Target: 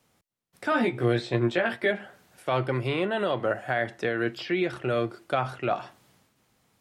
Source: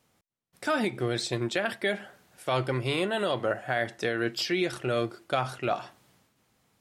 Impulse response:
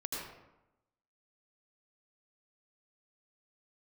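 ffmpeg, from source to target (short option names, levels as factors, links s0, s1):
-filter_complex "[0:a]acrossover=split=120|3200[s0][s1][s2];[s2]acompressor=threshold=0.00178:ratio=6[s3];[s0][s1][s3]amix=inputs=3:normalize=0,asettb=1/sr,asplit=3[s4][s5][s6];[s4]atrim=end=0.704[s7];[s5]atrim=start=0.7:end=1.91,asetpts=PTS-STARTPTS,afade=t=in:d=0.004:c=qsin,afade=t=out:st=1.206:d=0.004:c=qsin,asplit=2[s8][s9];[s9]adelay=17,volume=0.75[s10];[s8][s10]amix=inputs=2:normalize=0,atrim=end_sample=53361[s11];[s6]atrim=start=1.906[s12];[s7][s11]acrossfade=d=0.004:c1=hsin:c2=qsin[s13];[s13][s12]acrossfade=d=0.004:c1=qsin:c2=hsin,volume=1.19"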